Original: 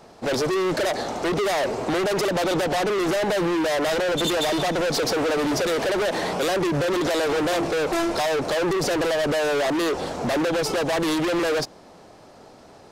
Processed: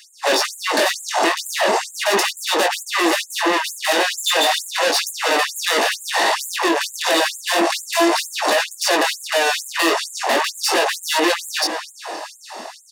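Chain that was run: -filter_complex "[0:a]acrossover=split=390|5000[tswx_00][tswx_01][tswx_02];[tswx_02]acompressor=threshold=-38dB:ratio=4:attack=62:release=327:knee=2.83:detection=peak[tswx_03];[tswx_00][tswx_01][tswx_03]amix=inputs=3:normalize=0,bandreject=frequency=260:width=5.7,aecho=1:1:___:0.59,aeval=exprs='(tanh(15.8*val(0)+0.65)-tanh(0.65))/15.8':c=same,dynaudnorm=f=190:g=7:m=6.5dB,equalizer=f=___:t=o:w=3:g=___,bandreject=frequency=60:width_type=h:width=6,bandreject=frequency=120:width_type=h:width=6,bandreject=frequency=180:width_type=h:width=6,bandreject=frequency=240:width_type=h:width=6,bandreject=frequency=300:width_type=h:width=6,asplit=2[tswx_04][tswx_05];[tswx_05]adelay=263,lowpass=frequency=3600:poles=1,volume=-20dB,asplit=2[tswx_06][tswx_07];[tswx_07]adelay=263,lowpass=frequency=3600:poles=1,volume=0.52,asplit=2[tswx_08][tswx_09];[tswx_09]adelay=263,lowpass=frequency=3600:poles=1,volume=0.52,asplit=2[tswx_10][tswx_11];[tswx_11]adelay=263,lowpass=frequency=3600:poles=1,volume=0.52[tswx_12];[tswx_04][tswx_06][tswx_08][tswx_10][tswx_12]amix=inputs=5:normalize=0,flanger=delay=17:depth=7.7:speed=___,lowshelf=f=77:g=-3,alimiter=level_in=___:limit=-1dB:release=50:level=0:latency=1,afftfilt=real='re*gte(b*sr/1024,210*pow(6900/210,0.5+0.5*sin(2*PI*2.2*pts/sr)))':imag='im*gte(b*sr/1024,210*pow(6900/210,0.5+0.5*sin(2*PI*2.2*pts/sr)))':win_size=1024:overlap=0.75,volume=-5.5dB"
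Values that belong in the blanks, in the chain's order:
1.1, 8200, 2, 0.36, 24.5dB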